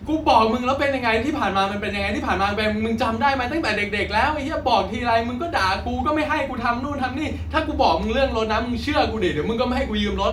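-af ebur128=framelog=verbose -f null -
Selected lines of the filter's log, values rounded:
Integrated loudness:
  I:         -21.4 LUFS
  Threshold: -31.4 LUFS
Loudness range:
  LRA:         1.2 LU
  Threshold: -41.7 LUFS
  LRA low:   -22.3 LUFS
  LRA high:  -21.1 LUFS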